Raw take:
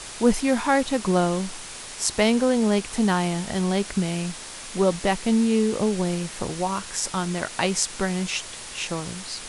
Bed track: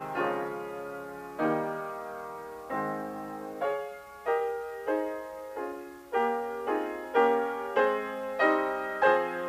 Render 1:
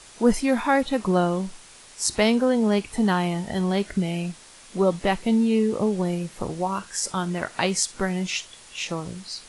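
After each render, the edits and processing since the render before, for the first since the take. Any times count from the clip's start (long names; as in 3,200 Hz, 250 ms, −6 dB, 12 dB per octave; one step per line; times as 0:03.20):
noise reduction from a noise print 10 dB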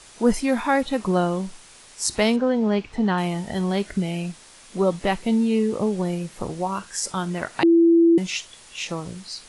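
0:02.36–0:03.18: high-frequency loss of the air 140 metres
0:07.63–0:08.18: beep over 335 Hz −11.5 dBFS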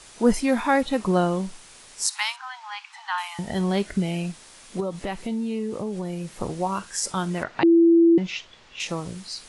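0:02.07–0:03.39: Butterworth high-pass 800 Hz 96 dB per octave
0:04.80–0:06.37: downward compressor 2.5 to 1, threshold −28 dBFS
0:07.43–0:08.80: high-frequency loss of the air 180 metres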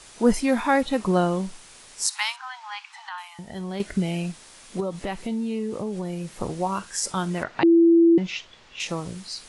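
0:03.09–0:03.80: clip gain −8.5 dB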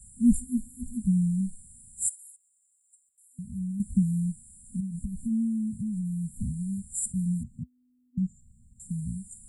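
brick-wall band-stop 250–7,100 Hz
parametric band 64 Hz +10 dB 1.3 octaves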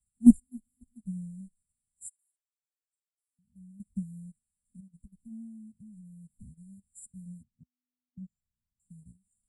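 in parallel at +3 dB: output level in coarse steps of 17 dB
on the sum: expander for the loud parts 2.5 to 1, over −33 dBFS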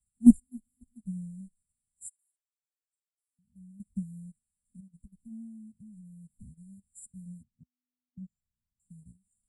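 no processing that can be heard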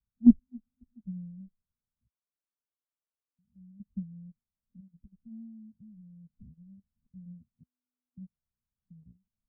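Chebyshev low-pass with heavy ripple 1,600 Hz, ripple 3 dB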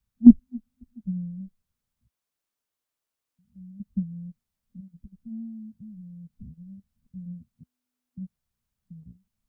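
level +8.5 dB
brickwall limiter −1 dBFS, peak gain reduction 3 dB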